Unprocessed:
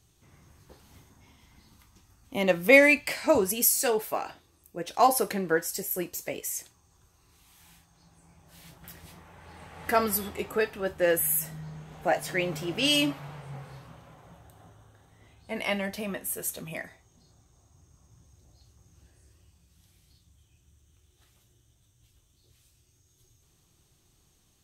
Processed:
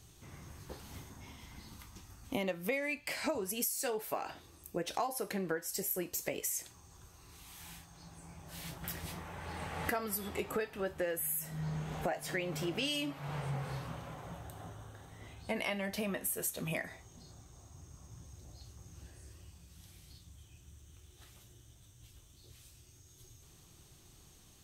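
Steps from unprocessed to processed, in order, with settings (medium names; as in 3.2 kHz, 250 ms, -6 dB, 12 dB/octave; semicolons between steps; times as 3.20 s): compression 10:1, threshold -39 dBFS, peak gain reduction 27 dB; trim +6 dB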